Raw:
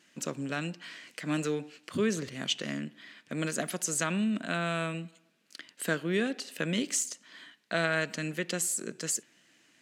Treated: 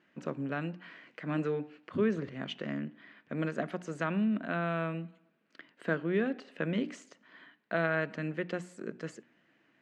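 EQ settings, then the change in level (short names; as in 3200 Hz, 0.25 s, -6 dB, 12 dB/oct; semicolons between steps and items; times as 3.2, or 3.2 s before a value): LPF 1700 Hz 12 dB/oct; notches 60/120/180/240/300 Hz; 0.0 dB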